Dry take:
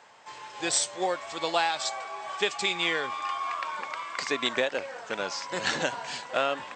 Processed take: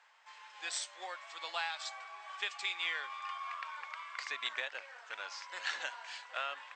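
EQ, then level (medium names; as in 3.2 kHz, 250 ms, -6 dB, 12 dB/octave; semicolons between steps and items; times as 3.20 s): high-pass 1.4 kHz 12 dB/octave; low-pass 2.3 kHz 6 dB/octave; -4.0 dB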